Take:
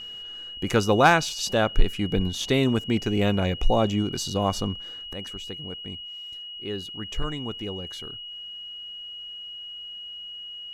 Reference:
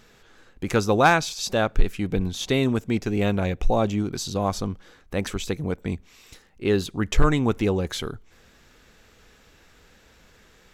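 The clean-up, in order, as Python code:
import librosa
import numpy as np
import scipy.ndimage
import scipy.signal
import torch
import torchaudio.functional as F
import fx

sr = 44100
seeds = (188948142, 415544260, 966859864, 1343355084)

y = fx.notch(x, sr, hz=2900.0, q=30.0)
y = fx.fix_level(y, sr, at_s=5.13, step_db=11.5)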